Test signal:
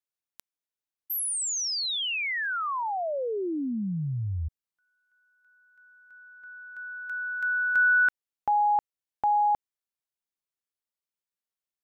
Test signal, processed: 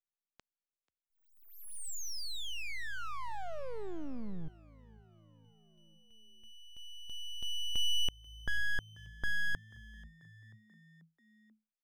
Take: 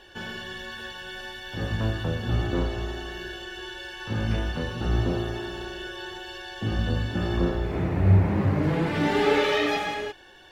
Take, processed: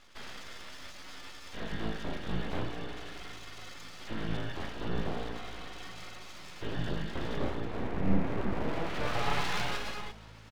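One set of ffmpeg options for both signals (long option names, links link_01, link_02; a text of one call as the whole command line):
ffmpeg -i in.wav -filter_complex "[0:a]lowpass=frequency=4500:width=0.5412,lowpass=frequency=4500:width=1.3066,aeval=exprs='abs(val(0))':channel_layout=same,asplit=5[link_01][link_02][link_03][link_04][link_05];[link_02]adelay=487,afreqshift=54,volume=-23dB[link_06];[link_03]adelay=974,afreqshift=108,volume=-27.6dB[link_07];[link_04]adelay=1461,afreqshift=162,volume=-32.2dB[link_08];[link_05]adelay=1948,afreqshift=216,volume=-36.7dB[link_09];[link_01][link_06][link_07][link_08][link_09]amix=inputs=5:normalize=0,volume=-6dB" out.wav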